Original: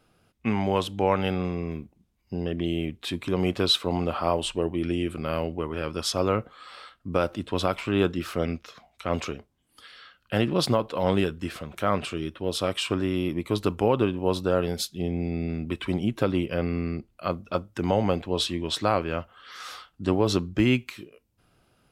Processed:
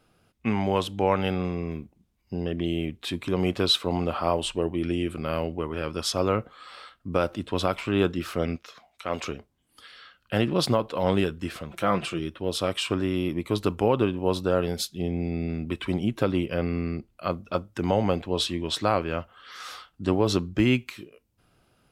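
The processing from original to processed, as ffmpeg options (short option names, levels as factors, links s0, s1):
-filter_complex "[0:a]asettb=1/sr,asplit=3[s0][s1][s2];[s0]atrim=end=8.564[s3];[s1]atrim=start=8.56:end=9.24,asetpts=PTS-STARTPTS,afade=t=in:d=0.004:c=qsin,afade=t=out:st=0.676:d=0.004:c=qsin,lowshelf=f=250:g=-10.5[s4];[s2]atrim=start=9.236[s5];[s3][s4]acrossfade=d=0.004:c1=hsin:c2=qsin[s6];[s6][s5]acrossfade=d=0.004:c1=qsin:c2=hsin,asettb=1/sr,asplit=3[s7][s8][s9];[s7]atrim=end=11.704[s10];[s8]atrim=start=11.7:end=12.19,asetpts=PTS-STARTPTS,afade=t=in:d=0.004:c=qsin,afade=t=out:st=0.486:d=0.004:c=qsin,aecho=1:1:5.9:0.58,atrim=end_sample=21609[s11];[s9]atrim=start=12.186[s12];[s10][s11]acrossfade=d=0.004:c1=hsin:c2=qsin[s13];[s13][s12]acrossfade=d=0.004:c1=qsin:c2=hsin"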